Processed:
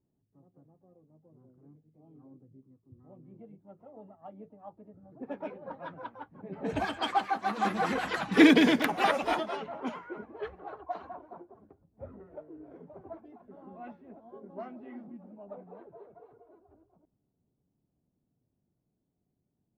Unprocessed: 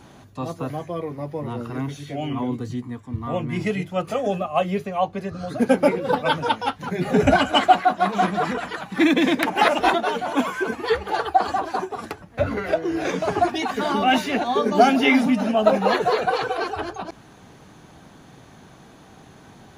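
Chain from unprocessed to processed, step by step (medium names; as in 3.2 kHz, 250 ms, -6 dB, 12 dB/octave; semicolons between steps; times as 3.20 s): Doppler pass-by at 8.33 s, 24 m/s, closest 6.6 m; harmony voices +5 st -17 dB, +7 st -14 dB; level-controlled noise filter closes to 370 Hz, open at -27.5 dBFS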